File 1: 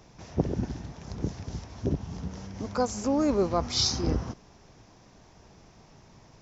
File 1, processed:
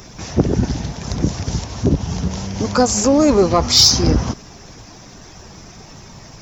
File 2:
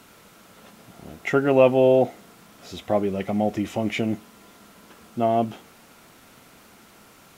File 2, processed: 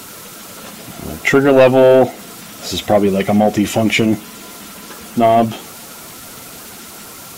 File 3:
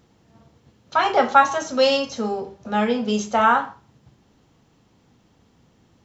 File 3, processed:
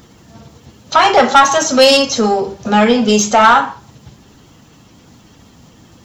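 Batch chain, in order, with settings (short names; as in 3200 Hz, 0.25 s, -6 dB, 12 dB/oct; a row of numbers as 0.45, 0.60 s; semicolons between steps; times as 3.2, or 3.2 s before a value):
bin magnitudes rounded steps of 15 dB; high shelf 3800 Hz +8.5 dB; in parallel at -2.5 dB: compressor, threshold -28 dBFS; on the sum: soft clip -11.5 dBFS; normalise peaks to -2 dBFS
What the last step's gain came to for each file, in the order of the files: +10.0, +9.5, +9.5 dB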